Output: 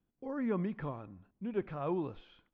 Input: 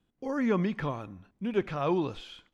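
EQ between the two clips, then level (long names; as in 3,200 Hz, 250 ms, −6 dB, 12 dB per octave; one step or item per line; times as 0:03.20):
low-pass filter 1,700 Hz 6 dB per octave
high-frequency loss of the air 150 metres
−6.0 dB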